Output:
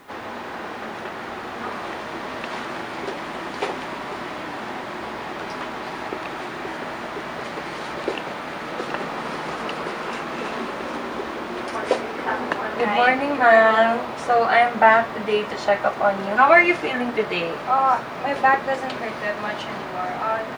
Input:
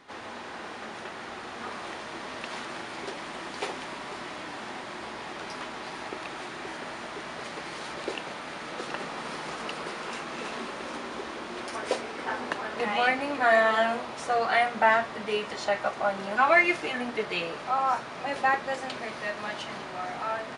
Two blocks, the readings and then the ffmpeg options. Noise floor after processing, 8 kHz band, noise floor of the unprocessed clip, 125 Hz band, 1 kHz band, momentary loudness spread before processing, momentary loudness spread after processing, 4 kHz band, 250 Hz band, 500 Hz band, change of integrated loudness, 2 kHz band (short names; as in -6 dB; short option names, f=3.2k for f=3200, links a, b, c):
-33 dBFS, +0.5 dB, -40 dBFS, +8.5 dB, +8.0 dB, 15 LU, 15 LU, +3.5 dB, +8.5 dB, +8.0 dB, +7.0 dB, +6.0 dB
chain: -af "highshelf=f=3.4k:g=-10,acrusher=bits=10:mix=0:aa=0.000001,volume=8.5dB"